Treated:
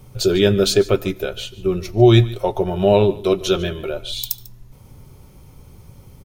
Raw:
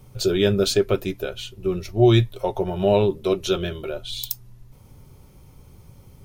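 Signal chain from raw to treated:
single-tap delay 146 ms −19 dB
on a send at −22.5 dB: convolution reverb RT60 0.45 s, pre-delay 76 ms
on the sum: level +4 dB

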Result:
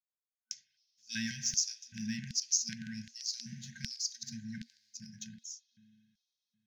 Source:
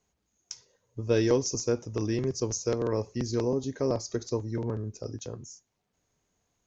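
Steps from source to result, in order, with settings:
downward expander −46 dBFS
spring reverb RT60 3.4 s, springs 37/56 ms, chirp 70 ms, DRR 9.5 dB
in parallel at −6 dB: slack as between gear wheels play −34 dBFS
on the sum: auto-filter high-pass square 1.3 Hz 300–4,700 Hz
brick-wall band-stop 230–1,500 Hz
level −3.5 dB

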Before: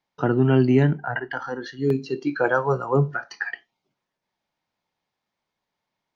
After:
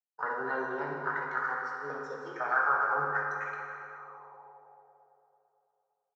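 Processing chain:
mu-law and A-law mismatch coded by A
high-pass filter 150 Hz
flat-topped bell 2,100 Hz −15.5 dB 1 octave
mains-hum notches 60/120/180/240/300/360/420 Hz
brickwall limiter −15 dBFS, peak gain reduction 7 dB
formants moved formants +5 semitones
downsampling to 16,000 Hz
convolution reverb RT60 3.1 s, pre-delay 3 ms, DRR −2.5 dB
envelope filter 730–1,500 Hz, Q 4, up, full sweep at −32 dBFS
level +4.5 dB

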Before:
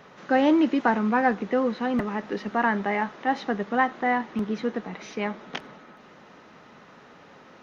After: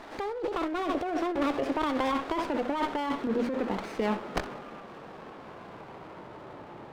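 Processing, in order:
gliding playback speed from 156% → 64%
low-pass filter 1,200 Hz 6 dB per octave
in parallel at −2.5 dB: brickwall limiter −19.5 dBFS, peak gain reduction 8 dB
on the sum: parametric band 170 Hz −3 dB 0.81 octaves
mains-hum notches 60/120/180/240 Hz
flutter between parallel walls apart 10.8 metres, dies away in 0.26 s
compressor whose output falls as the input rises −27 dBFS, ratio −1
low-shelf EQ 340 Hz −5.5 dB
windowed peak hold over 9 samples

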